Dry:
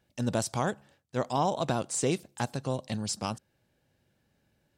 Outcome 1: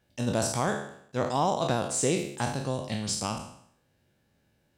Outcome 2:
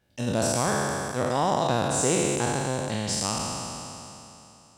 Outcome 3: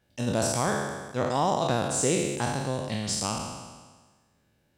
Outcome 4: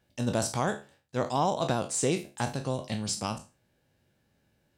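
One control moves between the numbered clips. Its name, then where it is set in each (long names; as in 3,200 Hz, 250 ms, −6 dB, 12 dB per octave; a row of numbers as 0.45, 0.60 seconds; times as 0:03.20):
peak hold with a decay on every bin, RT60: 0.67, 3.01, 1.43, 0.31 seconds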